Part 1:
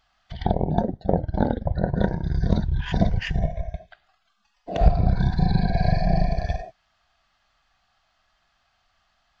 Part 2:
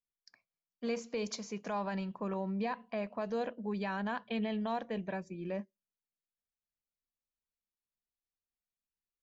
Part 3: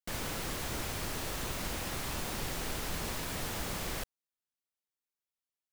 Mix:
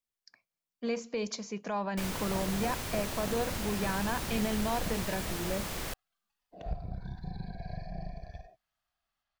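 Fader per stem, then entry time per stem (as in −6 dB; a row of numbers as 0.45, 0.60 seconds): −19.5, +2.5, 0.0 decibels; 1.85, 0.00, 1.90 seconds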